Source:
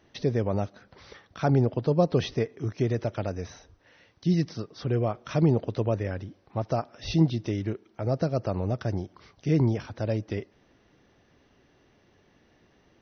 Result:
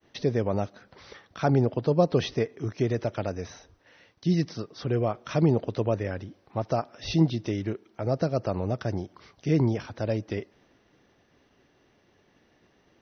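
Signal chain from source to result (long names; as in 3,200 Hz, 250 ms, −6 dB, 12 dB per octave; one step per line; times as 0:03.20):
downward expander −59 dBFS
low-shelf EQ 130 Hz −5.5 dB
level +1.5 dB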